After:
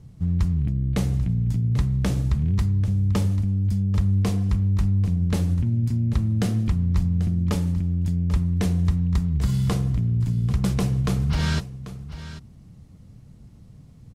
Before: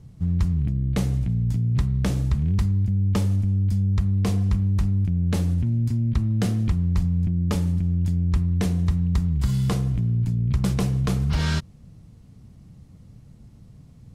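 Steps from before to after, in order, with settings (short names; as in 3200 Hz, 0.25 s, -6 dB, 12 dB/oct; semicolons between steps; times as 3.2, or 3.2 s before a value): echo 0.79 s -14 dB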